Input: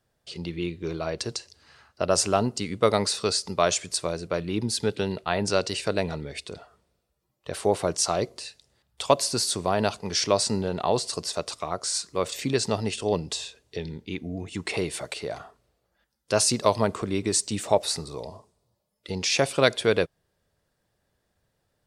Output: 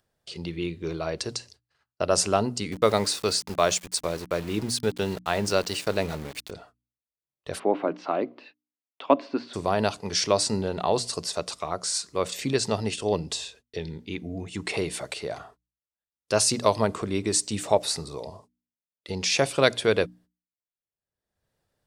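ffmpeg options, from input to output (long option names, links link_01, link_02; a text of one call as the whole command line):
ffmpeg -i in.wav -filter_complex "[0:a]asettb=1/sr,asplit=3[link_01][link_02][link_03];[link_01]atrim=end=2.724[link_04];[link_02]atrim=start=2.72:end=6.51,asetpts=PTS-STARTPTS,afade=type=in:duration=0.004:curve=qsin,afade=type=out:start_time=3.786:duration=0.004:curve=qsin,aeval=exprs='val(0)*gte(abs(val(0)),0.0158)':channel_layout=same[link_05];[link_03]atrim=start=6.506[link_06];[link_04][link_05]acrossfade=duration=0.004:curve1=hsin:curve2=qsin[link_07];[link_07][link_06]acrossfade=duration=0.004:curve1=qsin:curve2=hsin,asplit=3[link_08][link_09][link_10];[link_08]afade=type=out:start_time=7.58:duration=0.02[link_11];[link_09]highpass=frequency=210:width=0.5412,highpass=frequency=210:width=1.3066,equalizer=frequency=280:width_type=q:width=4:gain=10,equalizer=frequency=450:width_type=q:width=4:gain=-4,equalizer=frequency=1900:width_type=q:width=4:gain=-3,lowpass=frequency=2600:width=0.5412,lowpass=frequency=2600:width=1.3066,afade=type=in:start_time=7.58:duration=0.02,afade=type=out:start_time=9.53:duration=0.02[link_12];[link_10]afade=type=in:start_time=9.53:duration=0.02[link_13];[link_11][link_12][link_13]amix=inputs=3:normalize=0,agate=range=-48dB:threshold=-50dB:ratio=16:detection=peak,bandreject=frequency=60:width_type=h:width=6,bandreject=frequency=120:width_type=h:width=6,bandreject=frequency=180:width_type=h:width=6,bandreject=frequency=240:width_type=h:width=6,bandreject=frequency=300:width_type=h:width=6,acompressor=mode=upward:threshold=-43dB:ratio=2.5" out.wav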